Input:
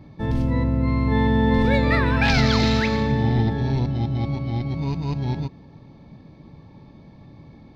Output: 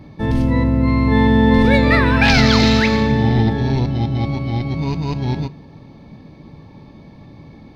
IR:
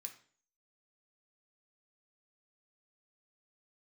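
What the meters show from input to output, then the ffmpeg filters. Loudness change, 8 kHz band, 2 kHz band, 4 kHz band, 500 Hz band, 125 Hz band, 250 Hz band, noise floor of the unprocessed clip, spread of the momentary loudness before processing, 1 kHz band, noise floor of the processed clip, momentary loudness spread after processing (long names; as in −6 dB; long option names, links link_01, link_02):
+5.5 dB, can't be measured, +7.0 dB, +7.0 dB, +5.5 dB, +4.0 dB, +6.5 dB, −47 dBFS, 8 LU, +5.5 dB, −42 dBFS, 10 LU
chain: -filter_complex "[0:a]asplit=2[link_01][link_02];[1:a]atrim=start_sample=2205,asetrate=52920,aresample=44100[link_03];[link_02][link_03]afir=irnorm=-1:irlink=0,volume=-2dB[link_04];[link_01][link_04]amix=inputs=2:normalize=0,volume=5dB"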